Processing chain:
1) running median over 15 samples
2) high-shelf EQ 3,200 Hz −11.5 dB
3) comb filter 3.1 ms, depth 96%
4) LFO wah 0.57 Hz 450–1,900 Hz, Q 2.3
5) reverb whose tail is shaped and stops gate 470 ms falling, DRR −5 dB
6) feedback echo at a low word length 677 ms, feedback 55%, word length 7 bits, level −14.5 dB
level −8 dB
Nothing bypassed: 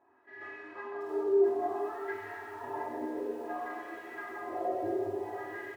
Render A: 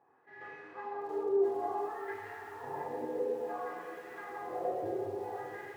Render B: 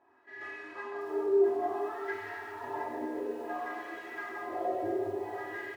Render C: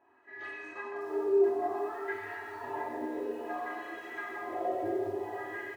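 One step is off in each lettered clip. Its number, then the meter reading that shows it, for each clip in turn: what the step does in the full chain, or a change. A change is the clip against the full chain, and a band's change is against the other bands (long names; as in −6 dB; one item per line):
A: 3, 125 Hz band +4.5 dB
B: 2, 2 kHz band +2.5 dB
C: 1, 2 kHz band +3.0 dB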